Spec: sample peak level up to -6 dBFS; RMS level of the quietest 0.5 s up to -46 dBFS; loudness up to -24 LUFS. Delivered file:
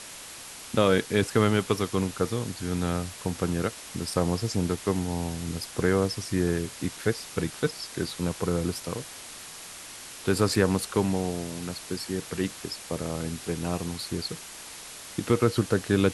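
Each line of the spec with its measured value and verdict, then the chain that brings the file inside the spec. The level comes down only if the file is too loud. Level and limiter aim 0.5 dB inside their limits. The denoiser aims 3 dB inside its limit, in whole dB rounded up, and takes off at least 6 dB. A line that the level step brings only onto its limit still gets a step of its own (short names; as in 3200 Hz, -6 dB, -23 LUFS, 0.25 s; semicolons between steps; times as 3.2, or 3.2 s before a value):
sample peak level -7.5 dBFS: OK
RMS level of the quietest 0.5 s -43 dBFS: fail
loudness -28.5 LUFS: OK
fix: denoiser 6 dB, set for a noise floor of -43 dBFS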